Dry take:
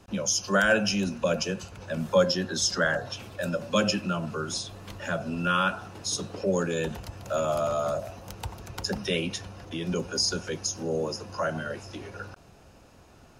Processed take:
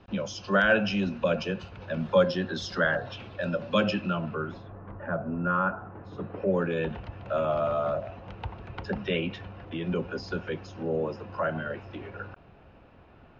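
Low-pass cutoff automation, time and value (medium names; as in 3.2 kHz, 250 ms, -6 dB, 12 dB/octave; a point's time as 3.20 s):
low-pass 24 dB/octave
4.11 s 3.8 kHz
4.81 s 1.5 kHz
5.85 s 1.5 kHz
6.72 s 3 kHz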